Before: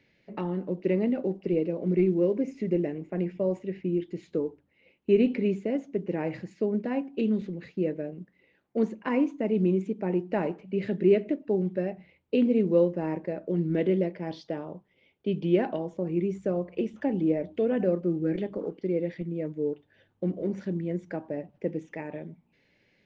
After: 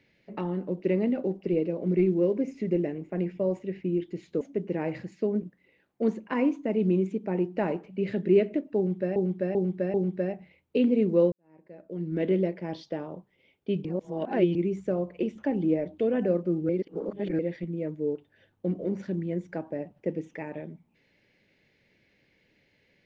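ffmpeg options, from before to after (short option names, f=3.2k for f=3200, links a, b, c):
-filter_complex "[0:a]asplit=11[a][b][c][d][e][f][g][h][i][j][k];[a]atrim=end=4.412[l];[b]atrim=start=5.798:end=6.812[m];[c]atrim=start=8.168:end=11.912[n];[d]atrim=start=11.518:end=11.912[o];[e]atrim=start=11.518:end=11.912[p];[f]atrim=start=11.518:end=12.9,asetpts=PTS-STARTPTS,afade=t=out:st=1.378:d=0.004:c=hsin[q];[g]atrim=start=12.9:end=15.432,asetpts=PTS-STARTPTS,afade=t=in:d=0.98:c=qua[r];[h]atrim=start=15.428:end=16.132,asetpts=PTS-STARTPTS,areverse[s];[i]atrim=start=16.128:end=18.272[t];[j]atrim=start=18.268:end=18.972,asetpts=PTS-STARTPTS,areverse[u];[k]atrim=start=18.968[v];[l][m]acrossfade=d=0.004:c1=hsin:c2=hsin[w];[w][n]acrossfade=d=0.004:c1=hsin:c2=hsin[x];[x][o]acrossfade=d=0.004:c1=hsin:c2=hsin[y];[y][p]acrossfade=d=0.004:c1=hsin:c2=hsin[z];[q][r]concat=n=2:v=0:a=1[aa];[z][aa]acrossfade=d=0.004:c1=hsin:c2=hsin[ab];[ab][s]acrossfade=d=0.004:c1=hsin:c2=hsin[ac];[ac][t]acrossfade=d=0.004:c1=hsin:c2=hsin[ad];[ad][u]acrossfade=d=0.004:c1=hsin:c2=hsin[ae];[ae][v]acrossfade=d=0.004:c1=hsin:c2=hsin"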